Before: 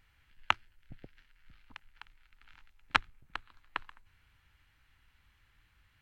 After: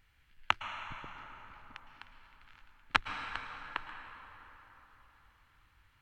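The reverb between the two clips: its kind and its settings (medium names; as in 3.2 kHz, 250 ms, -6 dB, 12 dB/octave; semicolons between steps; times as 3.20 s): plate-style reverb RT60 4.3 s, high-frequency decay 0.55×, pre-delay 100 ms, DRR 6 dB; trim -1 dB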